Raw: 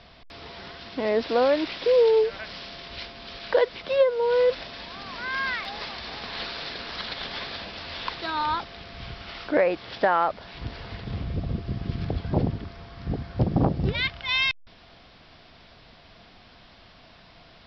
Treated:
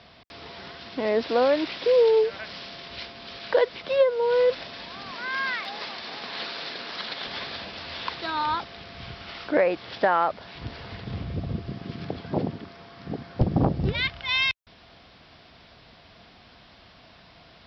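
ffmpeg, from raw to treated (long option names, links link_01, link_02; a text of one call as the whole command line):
ffmpeg -i in.wav -af "asetnsamples=nb_out_samples=441:pad=0,asendcmd='5.11 highpass f 180;7.27 highpass f 74;11.7 highpass f 180;13.41 highpass f 45',highpass=81" out.wav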